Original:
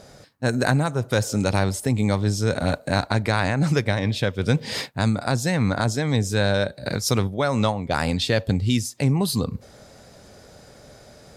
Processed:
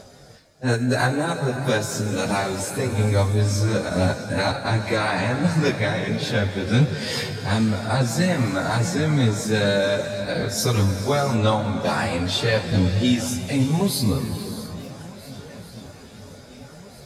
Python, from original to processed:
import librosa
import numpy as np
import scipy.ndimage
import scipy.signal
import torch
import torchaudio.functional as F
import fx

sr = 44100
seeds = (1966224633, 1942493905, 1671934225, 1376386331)

y = fx.echo_swing(x, sr, ms=1151, ratio=3, feedback_pct=54, wet_db=-21)
y = fx.rev_gated(y, sr, seeds[0], gate_ms=490, shape='flat', drr_db=7.0)
y = fx.stretch_vocoder_free(y, sr, factor=1.5)
y = fx.echo_warbled(y, sr, ms=445, feedback_pct=71, rate_hz=2.8, cents=195, wet_db=-23)
y = F.gain(torch.from_numpy(y), 3.0).numpy()